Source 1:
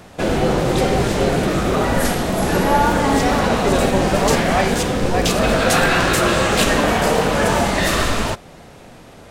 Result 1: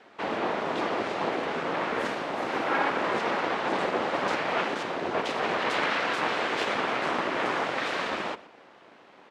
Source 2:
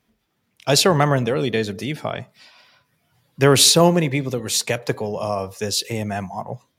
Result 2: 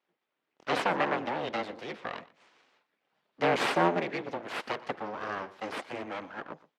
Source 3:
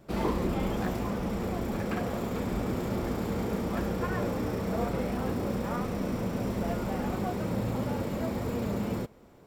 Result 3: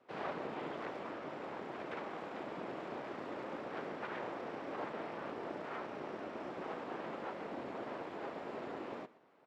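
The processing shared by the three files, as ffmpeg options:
-filter_complex "[0:a]afreqshift=-46,aeval=exprs='abs(val(0))':c=same,highpass=290,lowpass=2900,asplit=2[s0][s1];[s1]aecho=0:1:120:0.106[s2];[s0][s2]amix=inputs=2:normalize=0,volume=0.531"

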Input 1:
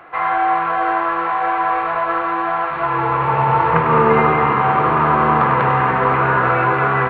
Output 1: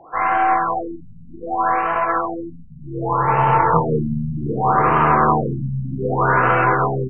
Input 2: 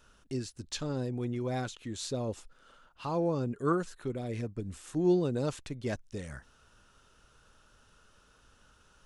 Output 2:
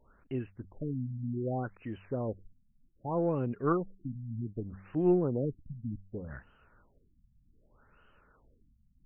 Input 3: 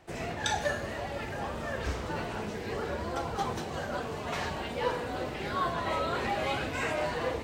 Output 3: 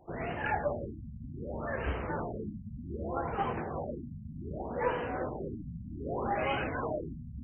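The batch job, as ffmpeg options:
-af "aeval=exprs='0.891*(cos(1*acos(clip(val(0)/0.891,-1,1)))-cos(1*PI/2))+0.0282*(cos(8*acos(clip(val(0)/0.891,-1,1)))-cos(8*PI/2))':c=same,bandreject=f=96.65:t=h:w=4,bandreject=f=193.3:t=h:w=4,afftfilt=real='re*lt(b*sr/1024,240*pow(3200/240,0.5+0.5*sin(2*PI*0.65*pts/sr)))':imag='im*lt(b*sr/1024,240*pow(3200/240,0.5+0.5*sin(2*PI*0.65*pts/sr)))':win_size=1024:overlap=0.75"

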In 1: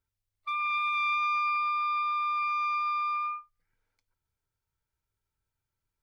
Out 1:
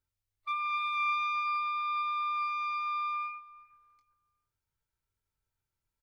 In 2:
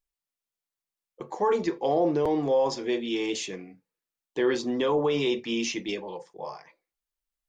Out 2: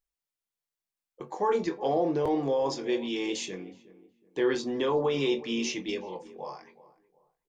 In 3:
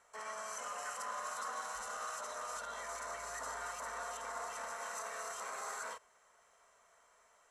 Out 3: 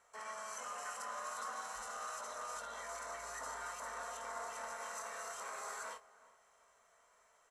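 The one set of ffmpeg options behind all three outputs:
-filter_complex "[0:a]asplit=2[s0][s1];[s1]adelay=22,volume=0.355[s2];[s0][s2]amix=inputs=2:normalize=0,asplit=2[s3][s4];[s4]adelay=369,lowpass=f=1200:p=1,volume=0.141,asplit=2[s5][s6];[s6]adelay=369,lowpass=f=1200:p=1,volume=0.34,asplit=2[s7][s8];[s8]adelay=369,lowpass=f=1200:p=1,volume=0.34[s9];[s3][s5][s7][s9]amix=inputs=4:normalize=0,volume=0.75"

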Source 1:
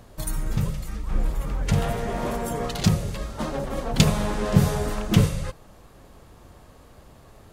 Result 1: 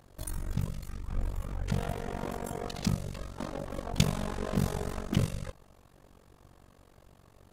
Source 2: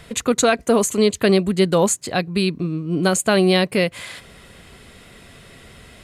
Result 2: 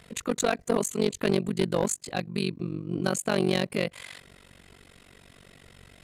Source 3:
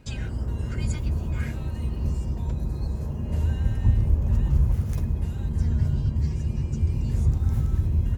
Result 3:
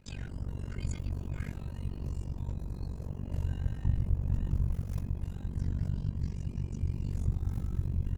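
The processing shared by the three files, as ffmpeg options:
-af "tremolo=f=47:d=0.974,aeval=exprs='clip(val(0),-1,0.2)':c=same,volume=0.562"

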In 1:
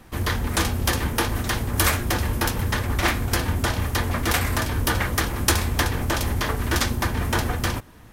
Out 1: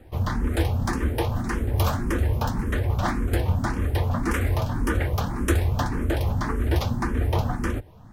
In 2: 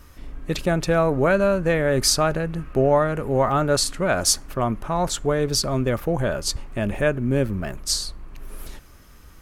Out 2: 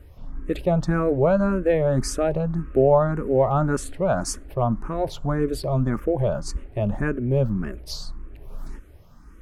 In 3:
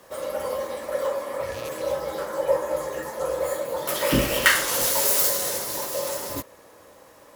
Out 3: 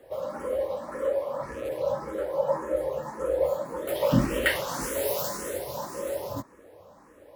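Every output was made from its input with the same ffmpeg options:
-filter_complex "[0:a]tiltshelf=f=1500:g=7,asplit=2[s0][s1];[s1]afreqshift=1.8[s2];[s0][s2]amix=inputs=2:normalize=1,volume=0.708"

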